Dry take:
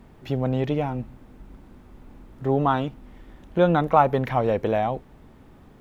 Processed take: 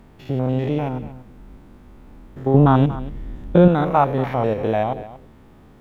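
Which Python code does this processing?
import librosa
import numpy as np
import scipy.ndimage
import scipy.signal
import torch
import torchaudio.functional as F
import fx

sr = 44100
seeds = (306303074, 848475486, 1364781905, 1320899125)

y = fx.spec_steps(x, sr, hold_ms=100)
y = fx.low_shelf(y, sr, hz=330.0, db=12.0, at=(2.54, 3.68))
y = y + 10.0 ** (-16.0 / 20.0) * np.pad(y, (int(234 * sr / 1000.0), 0))[:len(y)]
y = y * 10.0 ** (3.5 / 20.0)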